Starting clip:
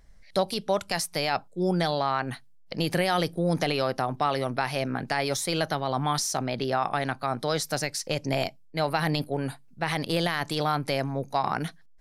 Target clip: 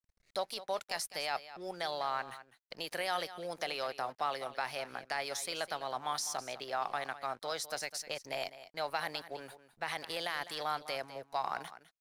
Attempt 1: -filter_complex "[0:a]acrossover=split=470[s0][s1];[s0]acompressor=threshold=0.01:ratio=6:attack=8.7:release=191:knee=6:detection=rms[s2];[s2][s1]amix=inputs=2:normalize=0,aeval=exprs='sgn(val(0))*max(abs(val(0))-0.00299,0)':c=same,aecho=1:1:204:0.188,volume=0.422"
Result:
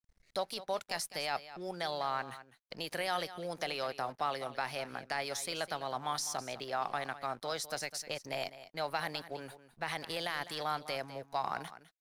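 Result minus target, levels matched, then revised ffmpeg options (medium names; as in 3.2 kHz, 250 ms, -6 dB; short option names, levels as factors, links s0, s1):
compression: peak gain reduction -6.5 dB
-filter_complex "[0:a]acrossover=split=470[s0][s1];[s0]acompressor=threshold=0.00398:ratio=6:attack=8.7:release=191:knee=6:detection=rms[s2];[s2][s1]amix=inputs=2:normalize=0,aeval=exprs='sgn(val(0))*max(abs(val(0))-0.00299,0)':c=same,aecho=1:1:204:0.188,volume=0.422"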